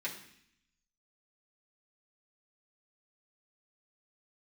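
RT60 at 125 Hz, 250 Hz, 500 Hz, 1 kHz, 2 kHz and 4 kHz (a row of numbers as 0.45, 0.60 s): 1.0, 0.90, 0.65, 0.65, 0.85, 0.80 s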